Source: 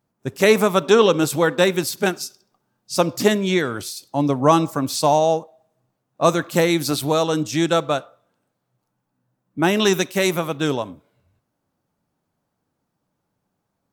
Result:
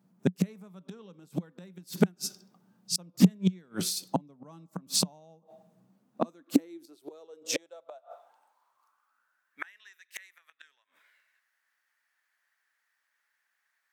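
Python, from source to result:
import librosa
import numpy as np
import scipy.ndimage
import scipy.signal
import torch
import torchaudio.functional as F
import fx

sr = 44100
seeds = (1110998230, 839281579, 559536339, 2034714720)

y = fx.gate_flip(x, sr, shuts_db=-13.0, range_db=-39)
y = fx.filter_sweep_highpass(y, sr, from_hz=180.0, to_hz=1800.0, start_s=5.8, end_s=9.68, q=6.8)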